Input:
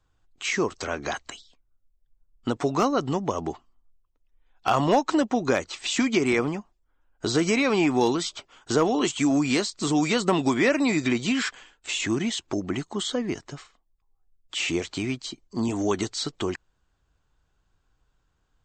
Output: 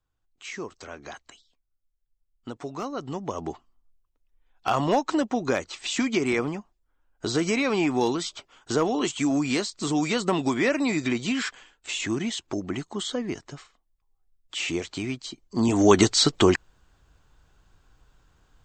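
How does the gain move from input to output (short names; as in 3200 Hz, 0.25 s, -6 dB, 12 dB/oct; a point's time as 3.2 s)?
2.82 s -10.5 dB
3.5 s -2 dB
15.31 s -2 dB
15.99 s +10 dB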